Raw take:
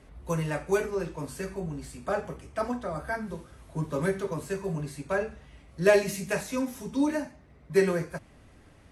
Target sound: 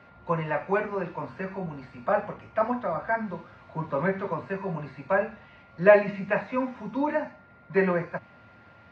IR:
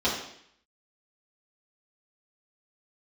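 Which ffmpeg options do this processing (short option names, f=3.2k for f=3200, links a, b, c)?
-filter_complex "[0:a]acrossover=split=2600[a][b];[b]acompressor=threshold=-58dB:ratio=4:attack=1:release=60[c];[a][c]amix=inputs=2:normalize=0,highpass=f=110:w=0.5412,highpass=f=110:w=1.3066,equalizer=f=150:t=q:w=4:g=-10,equalizer=f=290:t=q:w=4:g=-10,equalizer=f=420:t=q:w=4:g=-9,equalizer=f=990:t=q:w=4:g=3,equalizer=f=1.4k:t=q:w=4:g=-3,equalizer=f=3.3k:t=q:w=4:g=-7,lowpass=f=3.8k:w=0.5412,lowpass=f=3.8k:w=1.3066,aeval=exprs='val(0)+0.000794*sin(2*PI*1400*n/s)':c=same,volume=6.5dB"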